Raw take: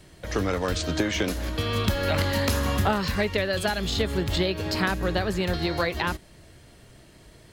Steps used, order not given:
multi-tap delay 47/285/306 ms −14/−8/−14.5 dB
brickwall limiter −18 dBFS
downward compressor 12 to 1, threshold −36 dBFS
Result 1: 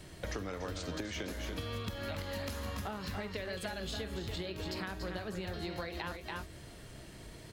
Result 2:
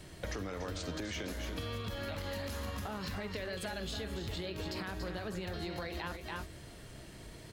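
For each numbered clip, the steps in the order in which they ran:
multi-tap delay, then downward compressor, then brickwall limiter
brickwall limiter, then multi-tap delay, then downward compressor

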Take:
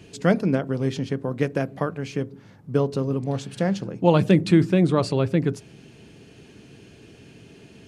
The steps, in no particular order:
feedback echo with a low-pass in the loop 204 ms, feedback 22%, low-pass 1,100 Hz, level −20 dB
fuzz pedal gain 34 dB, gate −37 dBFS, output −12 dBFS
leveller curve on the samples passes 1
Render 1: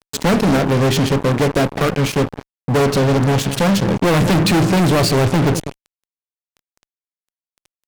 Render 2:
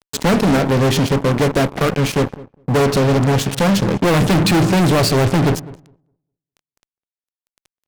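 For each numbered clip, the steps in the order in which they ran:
feedback echo with a low-pass in the loop, then fuzz pedal, then leveller curve on the samples
fuzz pedal, then feedback echo with a low-pass in the loop, then leveller curve on the samples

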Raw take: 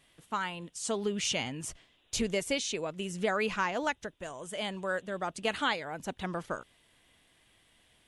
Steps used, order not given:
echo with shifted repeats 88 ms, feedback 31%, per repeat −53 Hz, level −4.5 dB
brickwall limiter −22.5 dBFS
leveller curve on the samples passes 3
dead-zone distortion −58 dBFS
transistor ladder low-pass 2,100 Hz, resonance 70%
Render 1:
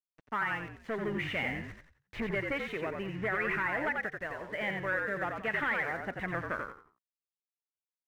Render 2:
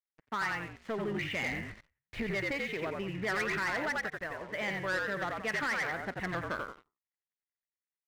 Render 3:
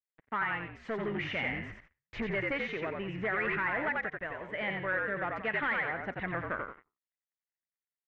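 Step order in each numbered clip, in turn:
leveller curve on the samples, then transistor ladder low-pass, then dead-zone distortion, then echo with shifted repeats, then brickwall limiter
dead-zone distortion, then echo with shifted repeats, then brickwall limiter, then transistor ladder low-pass, then leveller curve on the samples
dead-zone distortion, then echo with shifted repeats, then leveller curve on the samples, then transistor ladder low-pass, then brickwall limiter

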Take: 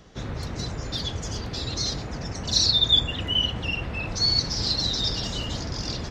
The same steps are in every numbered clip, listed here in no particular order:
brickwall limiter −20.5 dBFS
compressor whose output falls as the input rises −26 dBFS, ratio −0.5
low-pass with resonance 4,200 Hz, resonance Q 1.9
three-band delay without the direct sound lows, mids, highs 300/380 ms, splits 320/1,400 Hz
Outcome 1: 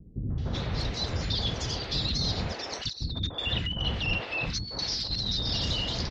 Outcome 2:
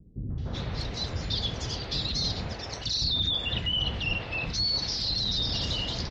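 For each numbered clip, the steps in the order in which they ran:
low-pass with resonance, then compressor whose output falls as the input rises, then brickwall limiter, then three-band delay without the direct sound
low-pass with resonance, then brickwall limiter, then compressor whose output falls as the input rises, then three-band delay without the direct sound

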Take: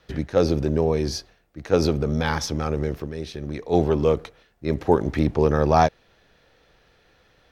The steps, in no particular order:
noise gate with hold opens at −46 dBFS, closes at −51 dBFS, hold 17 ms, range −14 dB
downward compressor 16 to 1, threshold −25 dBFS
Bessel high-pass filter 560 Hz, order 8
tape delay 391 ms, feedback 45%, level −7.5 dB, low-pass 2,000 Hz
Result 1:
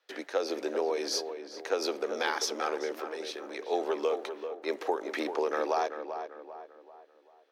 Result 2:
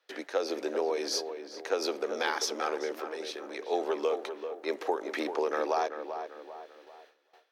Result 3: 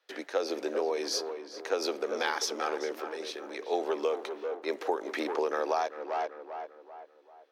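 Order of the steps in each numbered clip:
noise gate with hold, then Bessel high-pass filter, then downward compressor, then tape delay
Bessel high-pass filter, then downward compressor, then tape delay, then noise gate with hold
noise gate with hold, then tape delay, then Bessel high-pass filter, then downward compressor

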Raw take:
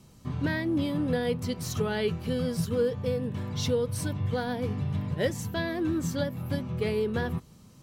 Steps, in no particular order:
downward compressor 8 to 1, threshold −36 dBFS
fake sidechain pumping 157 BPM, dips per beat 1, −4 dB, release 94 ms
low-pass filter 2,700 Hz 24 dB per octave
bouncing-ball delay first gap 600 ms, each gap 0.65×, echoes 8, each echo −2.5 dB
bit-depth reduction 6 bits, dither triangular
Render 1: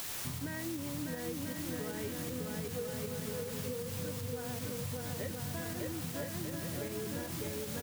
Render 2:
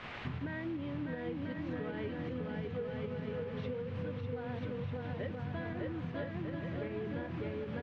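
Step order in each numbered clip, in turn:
low-pass filter, then bit-depth reduction, then bouncing-ball delay, then downward compressor, then fake sidechain pumping
bouncing-ball delay, then bit-depth reduction, then low-pass filter, then downward compressor, then fake sidechain pumping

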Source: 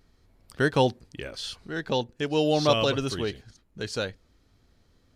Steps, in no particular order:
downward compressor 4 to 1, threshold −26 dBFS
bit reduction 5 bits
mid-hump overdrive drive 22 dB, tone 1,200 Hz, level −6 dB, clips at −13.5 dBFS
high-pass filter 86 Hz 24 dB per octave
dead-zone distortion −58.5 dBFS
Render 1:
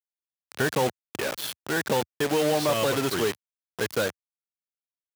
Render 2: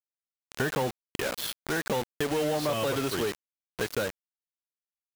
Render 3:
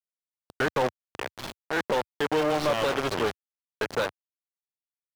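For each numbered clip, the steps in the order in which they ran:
downward compressor, then dead-zone distortion, then mid-hump overdrive, then bit reduction, then high-pass filter
dead-zone distortion, then mid-hump overdrive, then high-pass filter, then bit reduction, then downward compressor
downward compressor, then dead-zone distortion, then bit reduction, then high-pass filter, then mid-hump overdrive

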